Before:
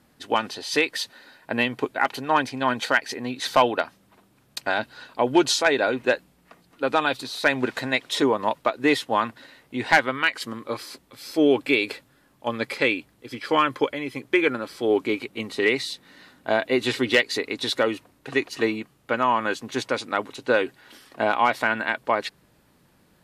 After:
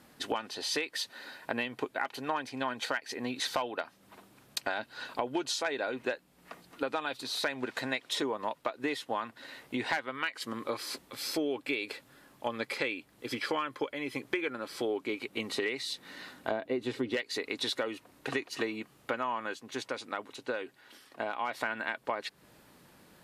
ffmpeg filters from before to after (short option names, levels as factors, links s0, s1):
-filter_complex "[0:a]asettb=1/sr,asplit=3[s0][s1][s2];[s0]atrim=end=16.514[s3];[s1]atrim=start=16.51:end=17.17,asetpts=PTS-STARTPTS,afade=t=in:d=0.004:c=qsin,afade=t=out:st=0.656:d=0.004:c=qsin,tiltshelf=f=860:g=7[s4];[s2]atrim=start=17.166[s5];[s3][s4]acrossfade=d=0.004:c1=hsin:c2=qsin[s6];[s6][s5]acrossfade=d=0.004:c1=qsin:c2=hsin,asplit=3[s7][s8][s9];[s7]atrim=end=19.63,asetpts=PTS-STARTPTS,afade=t=out:st=19.38:d=0.25:silence=0.316228[s10];[s8]atrim=start=19.63:end=21.39,asetpts=PTS-STARTPTS,volume=0.316[s11];[s9]atrim=start=21.39,asetpts=PTS-STARTPTS,afade=t=in:d=0.25:silence=0.316228[s12];[s10][s11][s12]concat=n=3:v=0:a=1,lowshelf=f=160:g=-8.5,acompressor=threshold=0.0178:ratio=5,volume=1.5"